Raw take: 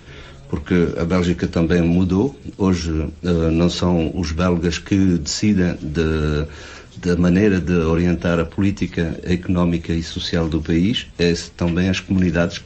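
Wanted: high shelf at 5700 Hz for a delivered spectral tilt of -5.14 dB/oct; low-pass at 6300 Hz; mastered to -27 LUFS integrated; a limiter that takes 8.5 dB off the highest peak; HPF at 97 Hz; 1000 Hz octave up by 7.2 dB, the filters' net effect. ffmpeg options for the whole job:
-af "highpass=97,lowpass=6.3k,equalizer=f=1k:t=o:g=9,highshelf=f=5.7k:g=8,volume=-5.5dB,alimiter=limit=-16dB:level=0:latency=1"

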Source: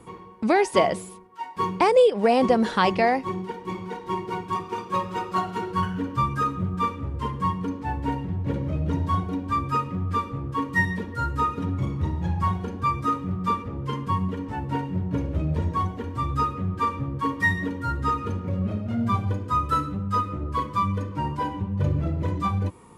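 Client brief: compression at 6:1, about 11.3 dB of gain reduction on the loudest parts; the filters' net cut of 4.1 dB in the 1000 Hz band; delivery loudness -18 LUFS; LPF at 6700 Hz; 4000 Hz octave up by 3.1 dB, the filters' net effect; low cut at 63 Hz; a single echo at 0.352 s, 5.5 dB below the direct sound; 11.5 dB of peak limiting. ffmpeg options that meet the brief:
-af "highpass=63,lowpass=6.7k,equalizer=f=1k:t=o:g=-5.5,equalizer=f=4k:t=o:g=5,acompressor=threshold=-26dB:ratio=6,alimiter=limit=-23dB:level=0:latency=1,aecho=1:1:352:0.531,volume=13.5dB"

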